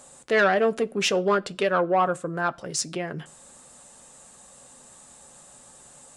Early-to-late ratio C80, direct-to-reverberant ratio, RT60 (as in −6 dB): 30.5 dB, 10.5 dB, non-exponential decay